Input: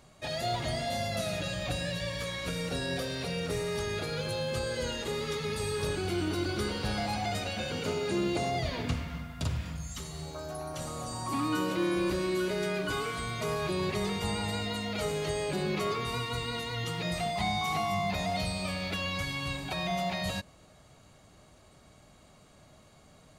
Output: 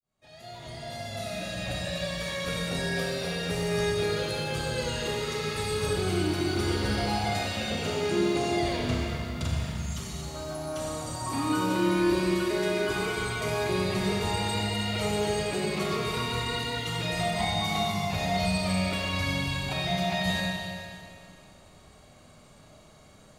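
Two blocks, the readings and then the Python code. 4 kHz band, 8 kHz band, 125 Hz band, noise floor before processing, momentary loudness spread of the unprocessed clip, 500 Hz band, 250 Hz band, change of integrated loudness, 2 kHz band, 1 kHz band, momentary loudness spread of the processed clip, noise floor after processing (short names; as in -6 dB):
+4.0 dB, +3.5 dB, +3.5 dB, -58 dBFS, 6 LU, +3.5 dB, +4.5 dB, +3.5 dB, +4.0 dB, +2.5 dB, 8 LU, -54 dBFS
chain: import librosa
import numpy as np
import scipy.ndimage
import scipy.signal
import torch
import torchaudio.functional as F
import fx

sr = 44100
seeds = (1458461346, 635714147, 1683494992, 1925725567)

y = fx.fade_in_head(x, sr, length_s=2.36)
y = fx.rev_schroeder(y, sr, rt60_s=2.4, comb_ms=29, drr_db=-1.5)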